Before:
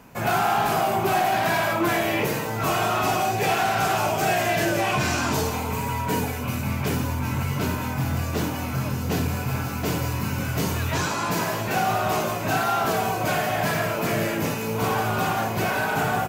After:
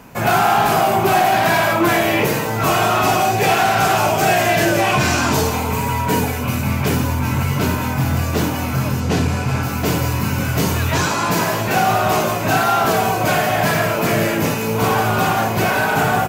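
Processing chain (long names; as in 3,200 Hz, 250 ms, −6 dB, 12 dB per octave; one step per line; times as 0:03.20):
0:09.00–0:09.63: low-pass filter 8,700 Hz 12 dB per octave
level +7 dB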